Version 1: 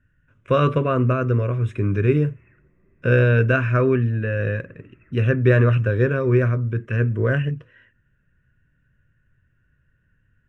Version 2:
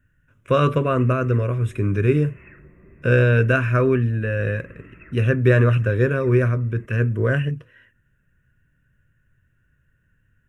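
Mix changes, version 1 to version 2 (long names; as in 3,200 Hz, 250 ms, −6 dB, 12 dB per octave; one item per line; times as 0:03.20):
background +11.5 dB
master: remove high-frequency loss of the air 82 metres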